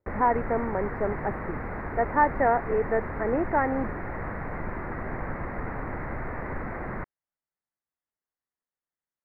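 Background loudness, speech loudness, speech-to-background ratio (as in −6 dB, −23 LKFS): −35.0 LKFS, −27.0 LKFS, 8.0 dB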